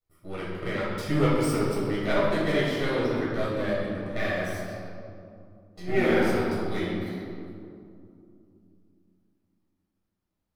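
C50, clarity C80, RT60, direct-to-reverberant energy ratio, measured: -1.5 dB, 1.0 dB, 2.6 s, -8.0 dB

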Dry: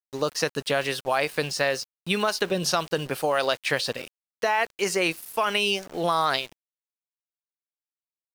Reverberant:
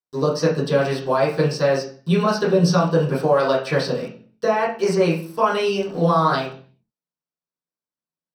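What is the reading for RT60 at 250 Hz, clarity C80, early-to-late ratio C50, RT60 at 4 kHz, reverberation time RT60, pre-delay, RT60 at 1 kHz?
0.70 s, 11.5 dB, 7.0 dB, 0.40 s, 0.45 s, 3 ms, 0.45 s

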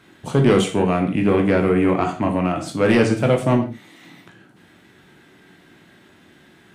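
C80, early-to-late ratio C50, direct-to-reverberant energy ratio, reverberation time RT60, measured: 13.5 dB, 9.0 dB, 2.5 dB, no single decay rate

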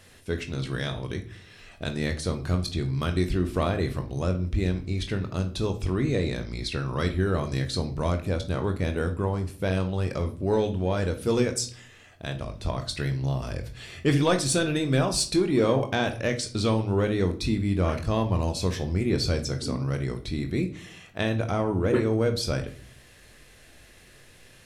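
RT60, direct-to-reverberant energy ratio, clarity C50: 0.45 s, 5.5 dB, 13.0 dB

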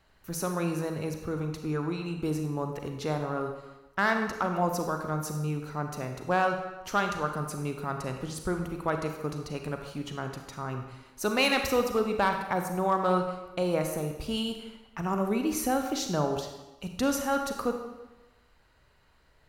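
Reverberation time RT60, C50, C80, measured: 1.1 s, 5.5 dB, 8.0 dB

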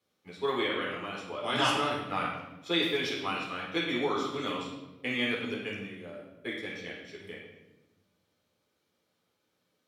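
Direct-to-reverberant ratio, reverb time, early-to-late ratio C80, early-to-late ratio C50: -6.0 dB, 1.0 s, 4.5 dB, 1.0 dB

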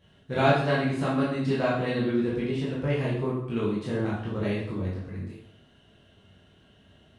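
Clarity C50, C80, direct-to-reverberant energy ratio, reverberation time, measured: 2.0 dB, 6.0 dB, -7.5 dB, 0.65 s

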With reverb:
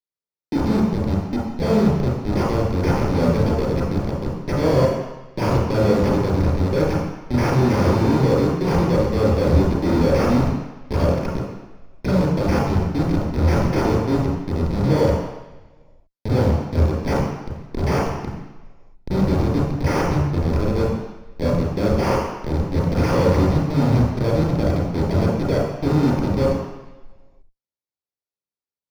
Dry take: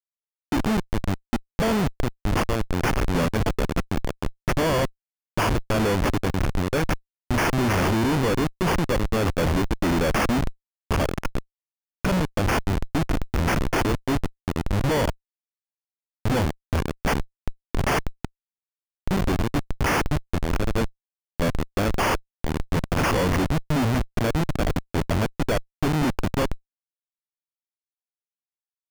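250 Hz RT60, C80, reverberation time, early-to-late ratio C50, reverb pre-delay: 1.0 s, 3.5 dB, 1.1 s, 0.0 dB, 28 ms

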